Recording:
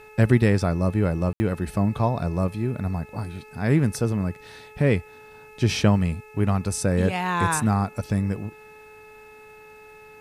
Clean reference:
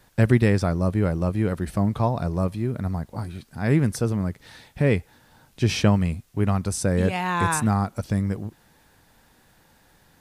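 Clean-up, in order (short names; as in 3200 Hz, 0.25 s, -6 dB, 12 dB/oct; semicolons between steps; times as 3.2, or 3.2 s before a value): de-hum 428.6 Hz, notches 6; notch 2600 Hz, Q 30; room tone fill 1.33–1.4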